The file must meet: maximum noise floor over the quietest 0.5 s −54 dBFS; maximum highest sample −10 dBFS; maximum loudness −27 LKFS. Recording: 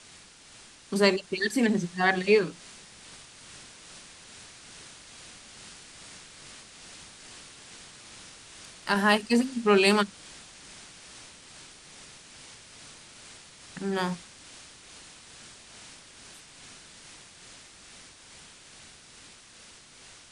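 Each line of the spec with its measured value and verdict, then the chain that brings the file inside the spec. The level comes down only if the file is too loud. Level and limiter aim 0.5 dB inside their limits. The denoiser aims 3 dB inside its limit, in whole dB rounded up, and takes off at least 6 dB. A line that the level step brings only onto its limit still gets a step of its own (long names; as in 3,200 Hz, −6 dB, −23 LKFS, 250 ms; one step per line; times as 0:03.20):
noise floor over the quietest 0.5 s −52 dBFS: out of spec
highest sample −8.0 dBFS: out of spec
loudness −25.5 LKFS: out of spec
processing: broadband denoise 6 dB, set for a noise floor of −52 dBFS
level −2 dB
brickwall limiter −10.5 dBFS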